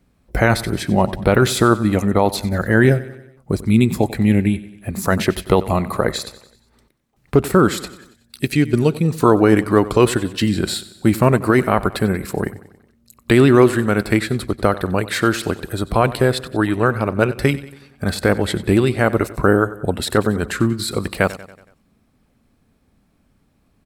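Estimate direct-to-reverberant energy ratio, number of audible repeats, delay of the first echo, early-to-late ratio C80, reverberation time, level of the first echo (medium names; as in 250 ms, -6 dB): no reverb, 4, 93 ms, no reverb, no reverb, -17.0 dB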